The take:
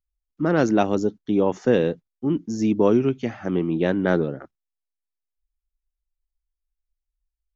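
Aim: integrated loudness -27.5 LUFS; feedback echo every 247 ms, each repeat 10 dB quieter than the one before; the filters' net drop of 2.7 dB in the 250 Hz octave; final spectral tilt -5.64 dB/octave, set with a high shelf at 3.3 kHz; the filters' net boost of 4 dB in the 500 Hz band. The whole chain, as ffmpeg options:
-af "equalizer=f=250:t=o:g=-6.5,equalizer=f=500:t=o:g=6.5,highshelf=f=3300:g=7,aecho=1:1:247|494|741|988:0.316|0.101|0.0324|0.0104,volume=0.447"

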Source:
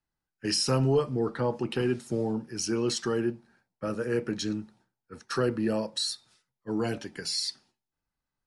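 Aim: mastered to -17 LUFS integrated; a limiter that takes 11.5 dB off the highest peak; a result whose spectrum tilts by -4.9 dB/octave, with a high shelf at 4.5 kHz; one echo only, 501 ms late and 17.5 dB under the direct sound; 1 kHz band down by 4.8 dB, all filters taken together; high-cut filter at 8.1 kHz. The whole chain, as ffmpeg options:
-af "lowpass=8100,equalizer=f=1000:t=o:g=-6,highshelf=f=4500:g=-7,alimiter=level_in=1.33:limit=0.0631:level=0:latency=1,volume=0.75,aecho=1:1:501:0.133,volume=8.91"

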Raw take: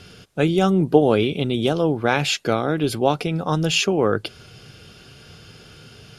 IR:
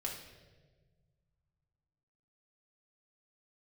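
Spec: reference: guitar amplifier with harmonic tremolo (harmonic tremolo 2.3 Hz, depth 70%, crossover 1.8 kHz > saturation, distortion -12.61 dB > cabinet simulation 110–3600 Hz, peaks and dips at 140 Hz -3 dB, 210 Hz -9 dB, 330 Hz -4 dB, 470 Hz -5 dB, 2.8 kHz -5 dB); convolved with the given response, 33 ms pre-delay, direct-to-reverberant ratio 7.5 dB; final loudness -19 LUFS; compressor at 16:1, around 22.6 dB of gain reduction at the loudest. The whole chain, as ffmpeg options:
-filter_complex "[0:a]acompressor=threshold=0.0282:ratio=16,asplit=2[s0][s1];[1:a]atrim=start_sample=2205,adelay=33[s2];[s1][s2]afir=irnorm=-1:irlink=0,volume=0.398[s3];[s0][s3]amix=inputs=2:normalize=0,acrossover=split=1800[s4][s5];[s4]aeval=exprs='val(0)*(1-0.7/2+0.7/2*cos(2*PI*2.3*n/s))':c=same[s6];[s5]aeval=exprs='val(0)*(1-0.7/2-0.7/2*cos(2*PI*2.3*n/s))':c=same[s7];[s6][s7]amix=inputs=2:normalize=0,asoftclip=threshold=0.0282,highpass=110,equalizer=f=140:t=q:w=4:g=-3,equalizer=f=210:t=q:w=4:g=-9,equalizer=f=330:t=q:w=4:g=-4,equalizer=f=470:t=q:w=4:g=-5,equalizer=f=2800:t=q:w=4:g=-5,lowpass=f=3600:w=0.5412,lowpass=f=3600:w=1.3066,volume=21.1"

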